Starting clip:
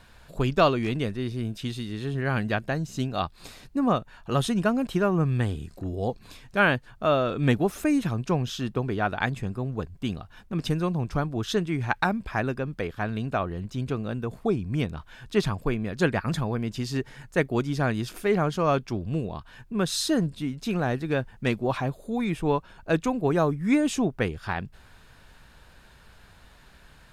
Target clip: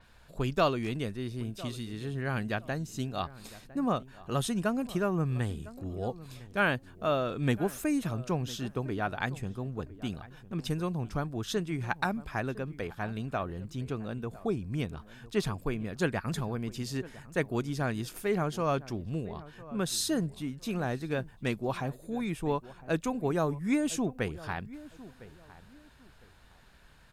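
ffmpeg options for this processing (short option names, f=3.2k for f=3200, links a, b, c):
-filter_complex "[0:a]asplit=2[a][b];[b]adelay=1006,lowpass=f=1.5k:p=1,volume=-17.5dB,asplit=2[c][d];[d]adelay=1006,lowpass=f=1.5k:p=1,volume=0.27[e];[c][e]amix=inputs=2:normalize=0[f];[a][f]amix=inputs=2:normalize=0,adynamicequalizer=threshold=0.00355:dfrequency=6200:dqfactor=0.7:tfrequency=6200:tqfactor=0.7:attack=5:release=100:ratio=0.375:range=3.5:mode=boostabove:tftype=highshelf,volume=-6dB"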